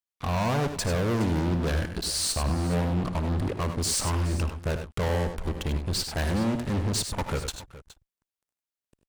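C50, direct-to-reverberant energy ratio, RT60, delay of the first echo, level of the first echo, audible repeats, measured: none, none, none, 56 ms, -18.5 dB, 3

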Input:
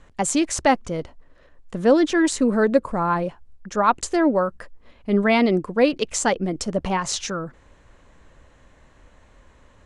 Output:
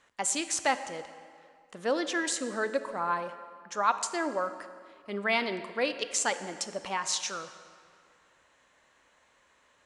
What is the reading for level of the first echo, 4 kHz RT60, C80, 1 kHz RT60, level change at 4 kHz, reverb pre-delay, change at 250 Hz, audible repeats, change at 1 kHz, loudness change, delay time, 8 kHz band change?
none, 1.6 s, 12.5 dB, 2.2 s, -3.5 dB, 20 ms, -17.0 dB, none, -7.5 dB, -9.5 dB, none, -3.5 dB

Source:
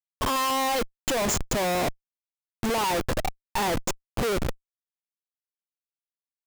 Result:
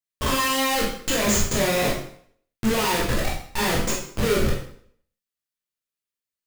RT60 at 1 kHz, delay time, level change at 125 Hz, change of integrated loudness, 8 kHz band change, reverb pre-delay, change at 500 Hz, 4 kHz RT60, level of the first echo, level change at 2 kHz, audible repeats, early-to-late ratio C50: 0.55 s, none, +6.0 dB, +4.0 dB, +5.0 dB, 7 ms, +3.5 dB, 0.55 s, none, +5.5 dB, none, 4.0 dB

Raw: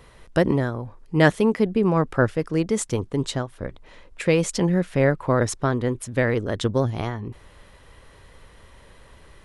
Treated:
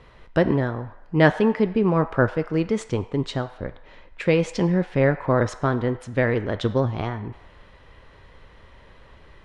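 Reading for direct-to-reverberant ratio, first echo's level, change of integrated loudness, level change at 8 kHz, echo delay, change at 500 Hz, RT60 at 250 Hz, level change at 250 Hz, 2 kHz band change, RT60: 9.5 dB, none, 0.0 dB, -11.5 dB, none, +0.5 dB, 1.2 s, 0.0 dB, 0.0 dB, 1.0 s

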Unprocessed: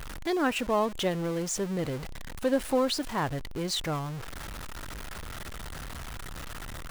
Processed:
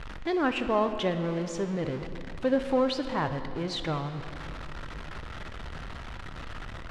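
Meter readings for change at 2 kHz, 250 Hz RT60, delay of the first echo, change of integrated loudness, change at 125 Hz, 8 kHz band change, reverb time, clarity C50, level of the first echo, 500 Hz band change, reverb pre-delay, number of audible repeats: 0.0 dB, 3.3 s, none, +1.0 dB, +0.5 dB, -12.0 dB, 2.8 s, 9.5 dB, none, +1.0 dB, 11 ms, none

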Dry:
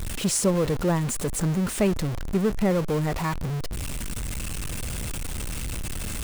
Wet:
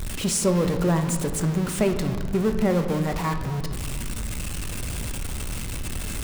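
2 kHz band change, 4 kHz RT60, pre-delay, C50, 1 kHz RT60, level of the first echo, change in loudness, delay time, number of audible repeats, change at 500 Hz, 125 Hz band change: +1.0 dB, 0.95 s, 3 ms, 8.0 dB, 1.6 s, none, +1.0 dB, none, none, +1.0 dB, +1.0 dB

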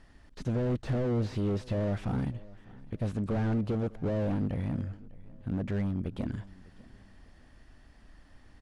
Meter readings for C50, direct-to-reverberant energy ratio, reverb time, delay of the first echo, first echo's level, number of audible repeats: none, none, none, 0.601 s, -21.5 dB, 2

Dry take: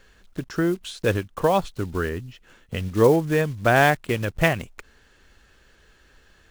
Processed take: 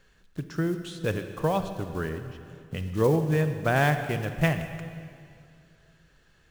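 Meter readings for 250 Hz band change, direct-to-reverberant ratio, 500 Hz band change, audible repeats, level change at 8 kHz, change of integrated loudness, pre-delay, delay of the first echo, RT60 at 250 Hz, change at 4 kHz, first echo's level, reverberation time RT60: -4.0 dB, 8.0 dB, -6.0 dB, none, -6.5 dB, -5.0 dB, 32 ms, none, 2.5 s, -6.5 dB, none, 2.4 s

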